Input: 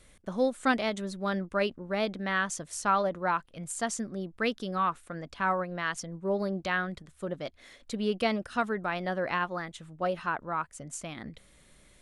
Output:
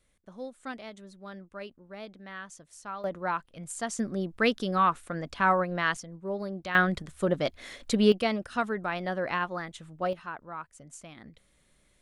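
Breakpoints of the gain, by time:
-13 dB
from 3.04 s -2 dB
from 3.99 s +4.5 dB
from 5.97 s -4 dB
from 6.75 s +8.5 dB
from 8.12 s 0 dB
from 10.13 s -7.5 dB

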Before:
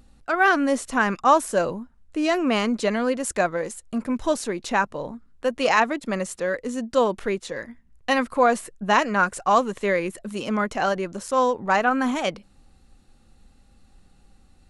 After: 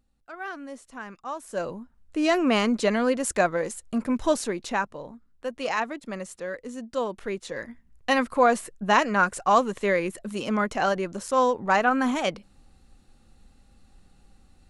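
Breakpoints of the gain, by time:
1.37 s -17.5 dB
1.59 s -7.5 dB
2.28 s 0 dB
4.4 s 0 dB
5.05 s -8 dB
7.14 s -8 dB
7.63 s -1 dB

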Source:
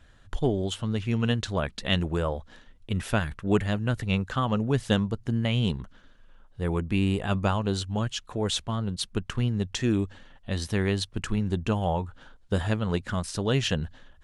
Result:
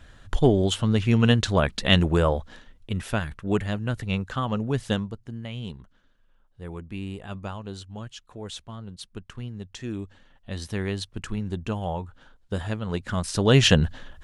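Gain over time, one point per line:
2.35 s +6.5 dB
3.02 s -1 dB
4.89 s -1 dB
5.3 s -9.5 dB
9.69 s -9.5 dB
10.67 s -3 dB
12.84 s -3 dB
13.65 s +9.5 dB

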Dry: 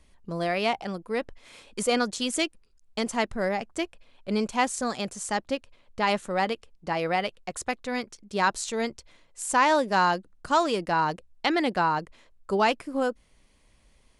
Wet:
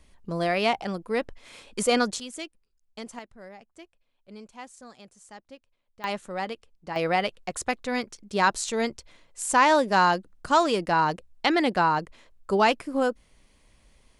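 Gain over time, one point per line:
+2 dB
from 2.2 s -10.5 dB
from 3.19 s -18 dB
from 6.04 s -5.5 dB
from 6.96 s +2 dB

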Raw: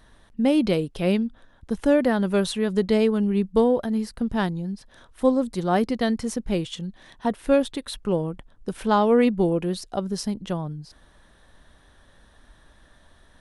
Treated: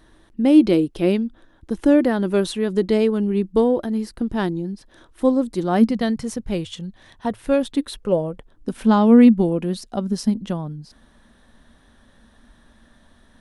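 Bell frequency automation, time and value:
bell +13 dB 0.36 oct
5.56 s 330 Hz
6.54 s 90 Hz
7.27 s 90 Hz
8.21 s 690 Hz
8.74 s 230 Hz

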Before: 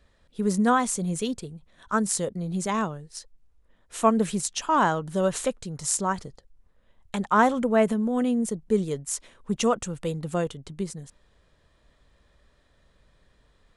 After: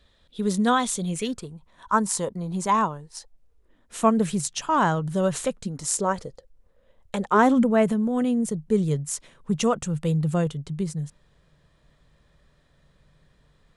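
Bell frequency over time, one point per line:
bell +12 dB 0.43 oct
1.05 s 3600 Hz
1.48 s 970 Hz
3.13 s 970 Hz
4.17 s 140 Hz
5.46 s 140 Hz
6.08 s 520 Hz
7.24 s 520 Hz
7.77 s 150 Hz

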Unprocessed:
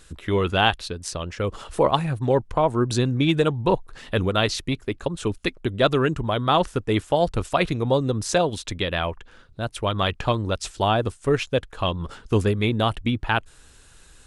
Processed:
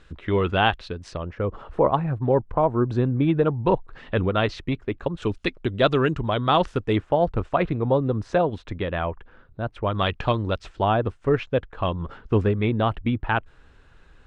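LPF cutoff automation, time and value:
2800 Hz
from 1.17 s 1400 Hz
from 3.63 s 2400 Hz
from 5.22 s 4400 Hz
from 6.96 s 1700 Hz
from 9.95 s 3800 Hz
from 10.59 s 2100 Hz

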